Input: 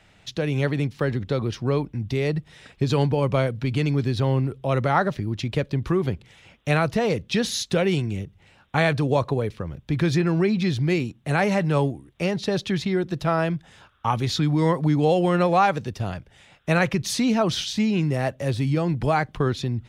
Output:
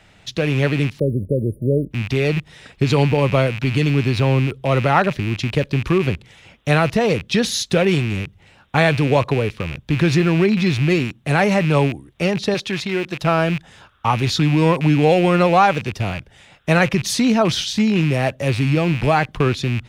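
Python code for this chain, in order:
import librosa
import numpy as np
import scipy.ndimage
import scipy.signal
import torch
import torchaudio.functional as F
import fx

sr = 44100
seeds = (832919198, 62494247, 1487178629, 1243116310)

y = fx.rattle_buzz(x, sr, strikes_db=-33.0, level_db=-23.0)
y = fx.spec_erase(y, sr, start_s=0.99, length_s=0.92, low_hz=630.0, high_hz=9100.0)
y = fx.low_shelf(y, sr, hz=260.0, db=-10.0, at=(12.54, 13.24))
y = y * 10.0 ** (5.0 / 20.0)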